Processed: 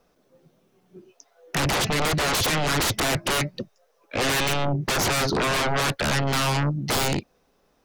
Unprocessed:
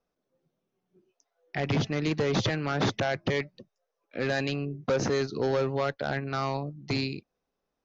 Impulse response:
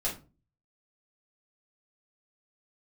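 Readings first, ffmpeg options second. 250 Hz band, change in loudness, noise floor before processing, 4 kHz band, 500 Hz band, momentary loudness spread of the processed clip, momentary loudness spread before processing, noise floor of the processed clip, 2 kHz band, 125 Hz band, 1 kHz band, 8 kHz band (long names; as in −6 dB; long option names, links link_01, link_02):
+2.5 dB, +6.0 dB, −83 dBFS, +11.0 dB, +1.0 dB, 6 LU, 8 LU, −66 dBFS, +8.5 dB, +5.0 dB, +8.5 dB, can't be measured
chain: -af "aeval=exprs='0.126*sin(PI/2*5.62*val(0)/0.126)':channel_layout=same,volume=-1.5dB"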